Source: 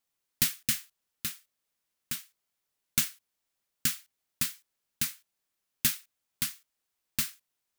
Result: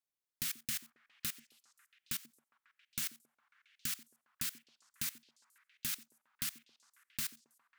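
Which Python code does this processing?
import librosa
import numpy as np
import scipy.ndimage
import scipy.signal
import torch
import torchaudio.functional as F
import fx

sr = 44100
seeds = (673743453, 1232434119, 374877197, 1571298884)

p1 = fx.level_steps(x, sr, step_db=20)
p2 = p1 + fx.echo_stepped(p1, sr, ms=136, hz=320.0, octaves=0.7, feedback_pct=70, wet_db=-9, dry=0)
y = p2 * 10.0 ** (4.0 / 20.0)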